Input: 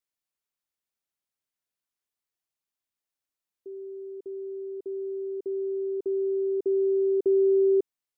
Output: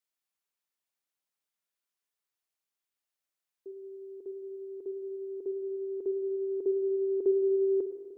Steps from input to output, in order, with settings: bass shelf 260 Hz -8.5 dB; spring tank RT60 1.9 s, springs 50/55/60 ms, chirp 45 ms, DRR 6.5 dB

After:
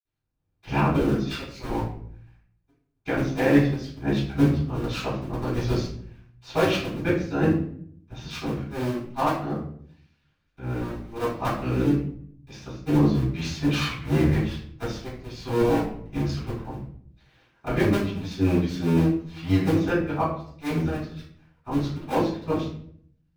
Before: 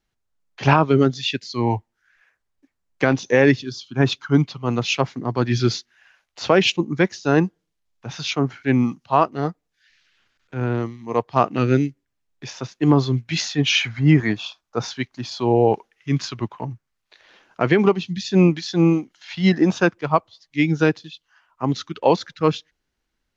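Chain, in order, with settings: cycle switcher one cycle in 2, muted; reverberation RT60 0.60 s, pre-delay 46 ms, DRR -60 dB; trim +4 dB

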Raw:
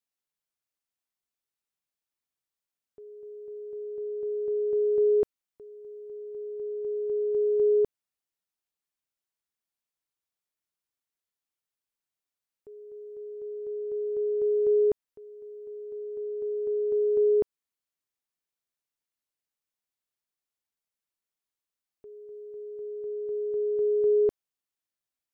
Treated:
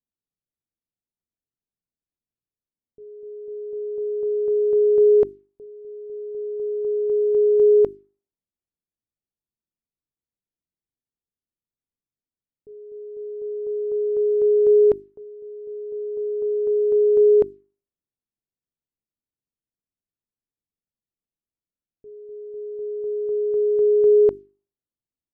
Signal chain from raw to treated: level-controlled noise filter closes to 300 Hz, open at -23 dBFS; hum notches 50/100/150/200/250/300/350/400 Hz; trim +8 dB

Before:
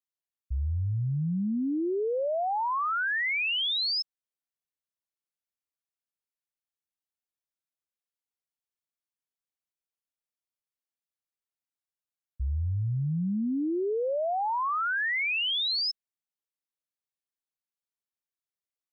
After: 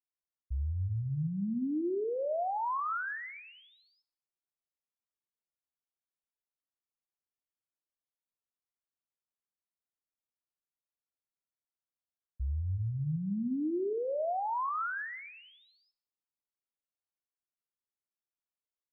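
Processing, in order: low-pass 1.5 kHz 24 dB/octave; on a send: reverberation RT60 0.70 s, pre-delay 3 ms, DRR 12 dB; on the sum: trim -4.5 dB

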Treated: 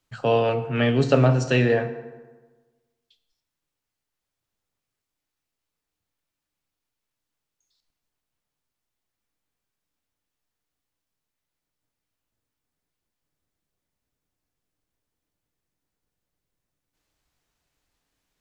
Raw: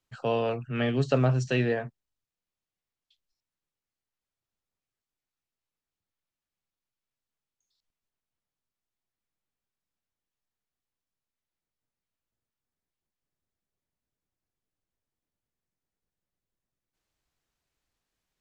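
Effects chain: FDN reverb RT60 1.3 s, low-frequency decay 1.05×, high-frequency decay 0.6×, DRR 8.5 dB; trim +6 dB

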